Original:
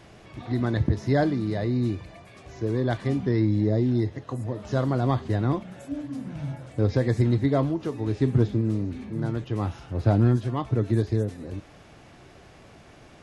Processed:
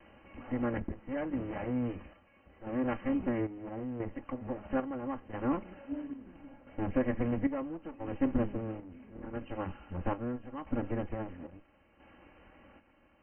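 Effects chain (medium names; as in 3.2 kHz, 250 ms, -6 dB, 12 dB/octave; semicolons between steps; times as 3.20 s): comb filter that takes the minimum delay 3.6 ms; square tremolo 0.75 Hz, depth 60%, duty 60%; brick-wall FIR low-pass 3.1 kHz; trim -5.5 dB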